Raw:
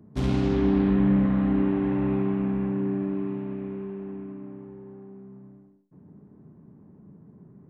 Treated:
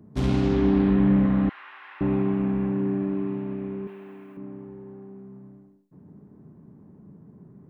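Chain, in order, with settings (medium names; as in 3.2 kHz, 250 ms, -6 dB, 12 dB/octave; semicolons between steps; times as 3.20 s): 1.49–2.01 s: high-pass 1.2 kHz 24 dB/octave; 3.87–4.37 s: tilt EQ +4.5 dB/octave; trim +1.5 dB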